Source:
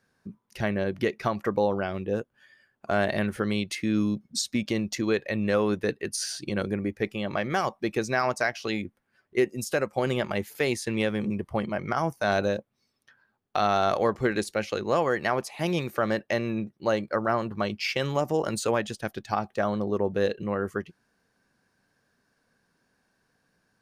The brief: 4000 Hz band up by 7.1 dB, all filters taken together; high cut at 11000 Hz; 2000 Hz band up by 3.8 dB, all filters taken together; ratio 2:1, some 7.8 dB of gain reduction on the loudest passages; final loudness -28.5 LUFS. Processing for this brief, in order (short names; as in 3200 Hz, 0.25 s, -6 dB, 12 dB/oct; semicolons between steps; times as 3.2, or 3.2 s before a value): LPF 11000 Hz; bell 2000 Hz +3 dB; bell 4000 Hz +8 dB; compressor 2:1, threshold -33 dBFS; gain +4.5 dB